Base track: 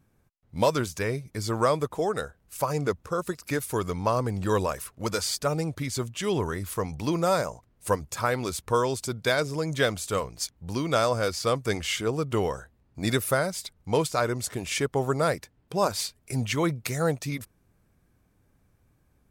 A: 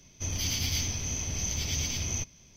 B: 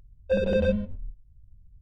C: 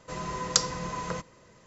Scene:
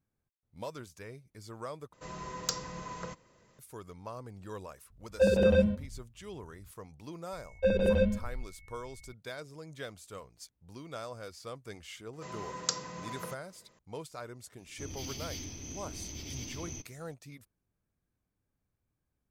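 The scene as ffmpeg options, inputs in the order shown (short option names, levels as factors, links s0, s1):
-filter_complex "[3:a]asplit=2[s0][s1];[2:a]asplit=2[s2][s3];[0:a]volume=0.126[s4];[s0]acontrast=77[s5];[s2]highpass=60[s6];[s3]aeval=exprs='val(0)+0.00178*sin(2*PI*2200*n/s)':c=same[s7];[s1]highpass=130[s8];[1:a]equalizer=f=310:t=o:w=0.77:g=13[s9];[s4]asplit=2[s10][s11];[s10]atrim=end=1.934[s12];[s5]atrim=end=1.66,asetpts=PTS-STARTPTS,volume=0.188[s13];[s11]atrim=start=3.586[s14];[s6]atrim=end=1.81,asetpts=PTS-STARTPTS,afade=t=in:d=0.004:c=hsin,afade=t=out:st=1.806:d=0.004:c=hsin,adelay=4900[s15];[s7]atrim=end=1.81,asetpts=PTS-STARTPTS,volume=0.75,afade=t=in:d=0.004:c=hsin,afade=t=out:st=1.806:d=0.004:c=hsin,adelay=7330[s16];[s8]atrim=end=1.66,asetpts=PTS-STARTPTS,volume=0.398,afade=t=in:d=0.004:c=hsin,afade=t=out:st=1.656:d=0.004:c=hsin,adelay=12130[s17];[s9]atrim=end=2.56,asetpts=PTS-STARTPTS,volume=0.251,afade=t=in:d=0.004:c=hsin,afade=t=out:st=2.556:d=0.004:c=hsin,adelay=14580[s18];[s12][s13]acrossfade=d=0.004:c1=hsin:c2=hsin[s19];[s19][s14]acrossfade=d=0.004:c1=hsin:c2=hsin[s20];[s20][s15][s16][s17][s18]amix=inputs=5:normalize=0"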